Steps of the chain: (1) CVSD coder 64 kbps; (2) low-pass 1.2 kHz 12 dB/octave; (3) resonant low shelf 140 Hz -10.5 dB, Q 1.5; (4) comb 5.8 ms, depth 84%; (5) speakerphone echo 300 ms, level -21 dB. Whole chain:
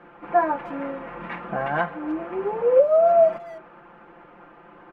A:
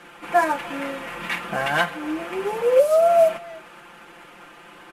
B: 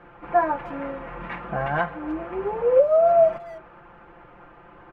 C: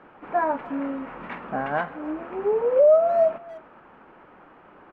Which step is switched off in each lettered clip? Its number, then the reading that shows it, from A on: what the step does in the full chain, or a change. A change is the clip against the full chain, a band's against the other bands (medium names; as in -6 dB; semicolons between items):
2, 2 kHz band +7.0 dB; 3, 125 Hz band +4.0 dB; 4, 250 Hz band +2.5 dB